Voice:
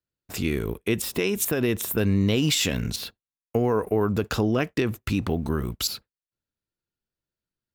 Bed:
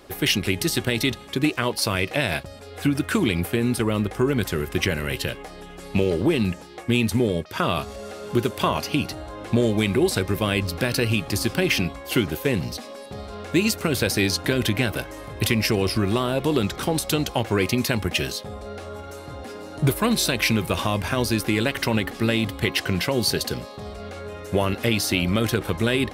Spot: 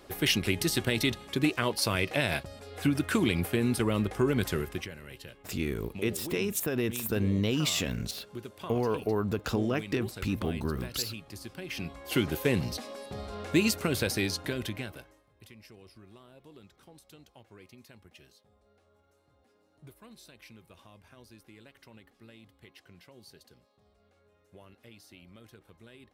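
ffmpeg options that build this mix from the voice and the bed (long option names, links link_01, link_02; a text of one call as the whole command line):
ffmpeg -i stem1.wav -i stem2.wav -filter_complex "[0:a]adelay=5150,volume=-6dB[link_01];[1:a]volume=10.5dB,afade=type=out:start_time=4.56:duration=0.32:silence=0.188365,afade=type=in:start_time=11.67:duration=0.67:silence=0.16788,afade=type=out:start_time=13.52:duration=1.71:silence=0.0421697[link_02];[link_01][link_02]amix=inputs=2:normalize=0" out.wav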